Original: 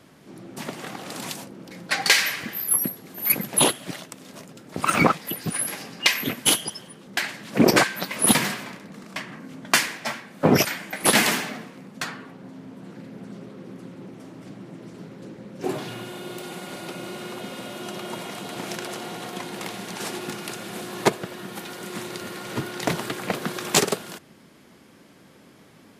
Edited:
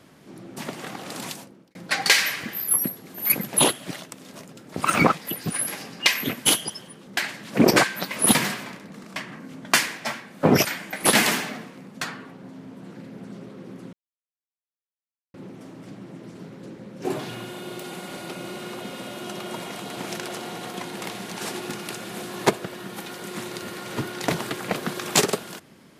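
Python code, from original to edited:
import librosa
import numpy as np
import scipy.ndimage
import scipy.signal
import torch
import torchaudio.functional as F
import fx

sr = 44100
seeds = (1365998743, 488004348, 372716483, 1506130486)

y = fx.edit(x, sr, fx.fade_out_span(start_s=1.22, length_s=0.53),
    fx.insert_silence(at_s=13.93, length_s=1.41), tone=tone)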